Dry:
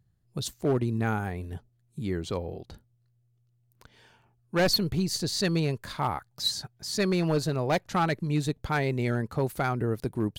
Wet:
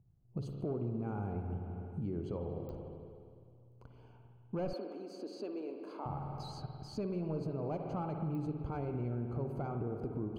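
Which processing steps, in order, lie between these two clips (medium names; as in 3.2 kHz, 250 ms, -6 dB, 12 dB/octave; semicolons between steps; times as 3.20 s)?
peak limiter -23.5 dBFS, peak gain reduction 6 dB; boxcar filter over 24 samples; reverberation RT60 2.3 s, pre-delay 50 ms, DRR 4 dB; compression 2.5:1, threshold -37 dBFS, peak gain reduction 8.5 dB; 4.73–6.06 s: steep high-pass 250 Hz 48 dB/octave; clicks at 2.69/8.35 s, -36 dBFS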